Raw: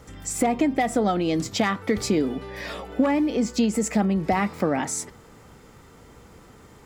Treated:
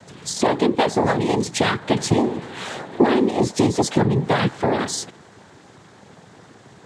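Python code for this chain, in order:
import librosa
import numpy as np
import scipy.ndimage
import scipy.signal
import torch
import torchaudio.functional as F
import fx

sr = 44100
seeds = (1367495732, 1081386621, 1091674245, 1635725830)

y = fx.noise_vocoder(x, sr, seeds[0], bands=6)
y = F.gain(torch.from_numpy(y), 4.0).numpy()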